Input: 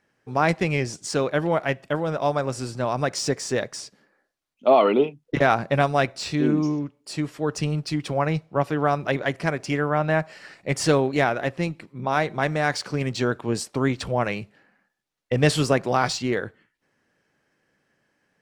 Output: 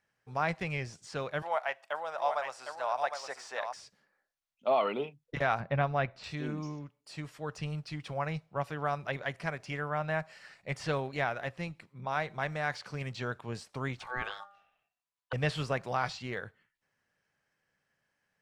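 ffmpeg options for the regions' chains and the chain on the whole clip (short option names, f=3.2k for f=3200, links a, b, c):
-filter_complex "[0:a]asettb=1/sr,asplit=3[a][b][c];[a]atrim=end=1.424[d];[b]atrim=start=1.42:end=3.74,asetpts=PTS-STARTPTS,afade=t=in:d=0.004:c=qsin,afade=t=out:st=2.316:d=0.004:c=qsin,highpass=f=750:t=q:w=1.9,aecho=1:1:759:0.473,atrim=end_sample=102312[e];[c]atrim=start=3.736[f];[d][e]acrossfade=d=0.004:c1=hsin:c2=qsin[g];[g][f]acrossfade=d=0.004:c1=qsin:c2=hsin,asettb=1/sr,asplit=3[h][i][j];[h]atrim=end=5.604[k];[i]atrim=start=5.6:end=6.24,asetpts=PTS-STARTPTS,afade=t=in:d=0.004:c=qsin,afade=t=out:st=0.636:d=0.004:c=qsin,lowpass=2.8k,lowshelf=f=380:g=5[l];[j]atrim=start=6.236[m];[k][l]acrossfade=d=0.004:c1=hsin:c2=qsin[n];[n][m]acrossfade=d=0.004:c1=qsin:c2=hsin,asettb=1/sr,asplit=3[o][p][q];[o]atrim=end=13.994[r];[p]atrim=start=13.99:end=15.33,asetpts=PTS-STARTPTS,afade=t=in:d=0.004:c=qsin,afade=t=out:st=1.336:d=0.004:c=qsin,bandreject=f=204.3:t=h:w=4,bandreject=f=408.6:t=h:w=4,bandreject=f=612.9:t=h:w=4,bandreject=f=817.2:t=h:w=4,aeval=exprs='val(0)*sin(2*PI*1000*n/s)':c=same[s];[q]atrim=start=15.326[t];[r][s]acrossfade=d=0.004:c1=hsin:c2=qsin[u];[u][t]acrossfade=d=0.004:c1=qsin:c2=hsin,acrossover=split=4000[v][w];[w]acompressor=threshold=-45dB:ratio=4:attack=1:release=60[x];[v][x]amix=inputs=2:normalize=0,equalizer=f=310:t=o:w=1.3:g=-10.5,volume=-8dB"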